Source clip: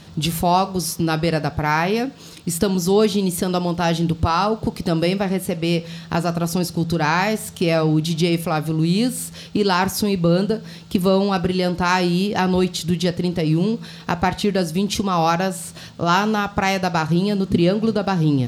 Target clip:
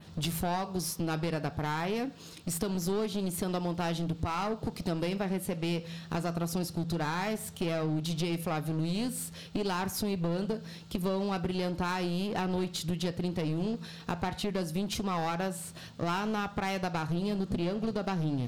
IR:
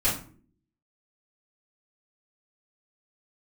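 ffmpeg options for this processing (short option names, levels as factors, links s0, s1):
-af "acompressor=threshold=0.126:ratio=6,adynamicequalizer=threshold=0.00794:dfrequency=5900:dqfactor=1.1:tfrequency=5900:tqfactor=1.1:attack=5:release=100:ratio=0.375:range=2:mode=cutabove:tftype=bell,aeval=exprs='clip(val(0),-1,0.0708)':c=same,volume=0.398"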